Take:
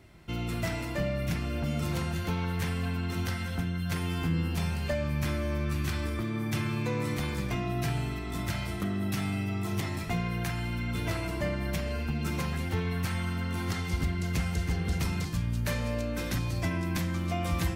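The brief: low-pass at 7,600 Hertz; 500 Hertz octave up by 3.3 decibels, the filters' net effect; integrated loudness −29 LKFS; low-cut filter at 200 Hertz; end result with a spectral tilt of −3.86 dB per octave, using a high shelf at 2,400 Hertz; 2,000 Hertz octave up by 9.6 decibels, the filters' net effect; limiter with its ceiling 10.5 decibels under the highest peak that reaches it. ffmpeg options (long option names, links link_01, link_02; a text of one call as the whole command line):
ffmpeg -i in.wav -af "highpass=200,lowpass=7600,equalizer=frequency=500:width_type=o:gain=3.5,equalizer=frequency=2000:width_type=o:gain=7.5,highshelf=frequency=2400:gain=7.5,volume=2.5dB,alimiter=limit=-20dB:level=0:latency=1" out.wav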